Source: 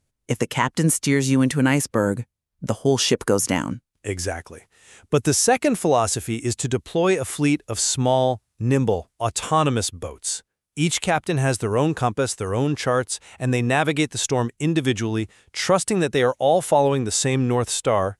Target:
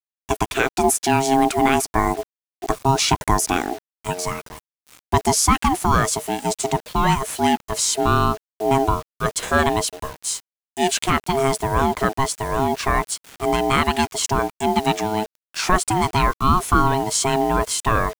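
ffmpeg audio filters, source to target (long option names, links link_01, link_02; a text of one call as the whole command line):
ffmpeg -i in.wav -af "aeval=exprs='val(0)*sin(2*PI*540*n/s)':channel_layout=same,acrusher=bits=6:mix=0:aa=0.000001,volume=4dB" out.wav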